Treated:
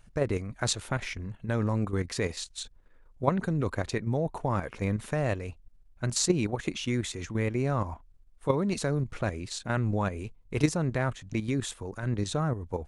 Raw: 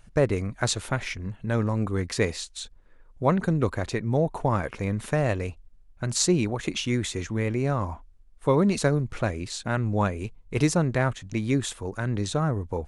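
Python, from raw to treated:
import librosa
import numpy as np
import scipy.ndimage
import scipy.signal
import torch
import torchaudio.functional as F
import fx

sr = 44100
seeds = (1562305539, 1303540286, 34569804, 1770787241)

y = fx.level_steps(x, sr, step_db=9)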